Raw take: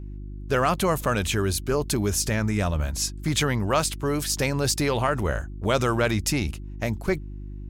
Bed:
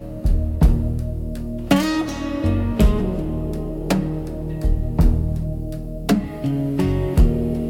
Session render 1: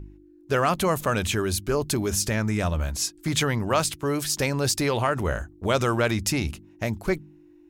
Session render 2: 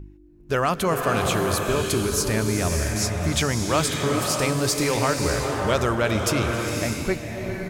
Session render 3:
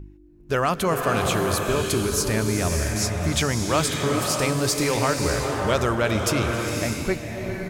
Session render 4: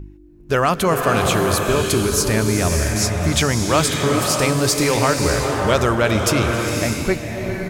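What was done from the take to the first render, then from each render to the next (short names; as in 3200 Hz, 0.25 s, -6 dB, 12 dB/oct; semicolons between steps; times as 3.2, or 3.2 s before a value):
de-hum 50 Hz, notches 5
outdoor echo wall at 69 m, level -11 dB; bloom reverb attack 0.61 s, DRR 2 dB
nothing audible
gain +5 dB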